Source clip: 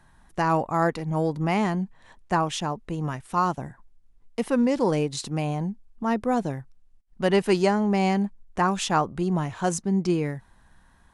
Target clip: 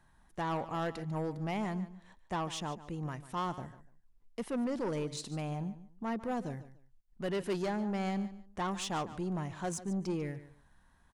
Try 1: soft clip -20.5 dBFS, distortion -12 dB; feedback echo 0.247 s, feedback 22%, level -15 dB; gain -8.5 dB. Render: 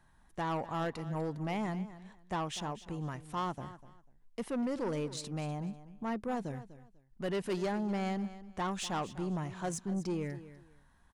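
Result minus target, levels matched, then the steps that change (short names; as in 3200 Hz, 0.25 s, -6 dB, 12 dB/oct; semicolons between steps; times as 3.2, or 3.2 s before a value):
echo 0.101 s late
change: feedback echo 0.146 s, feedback 22%, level -15 dB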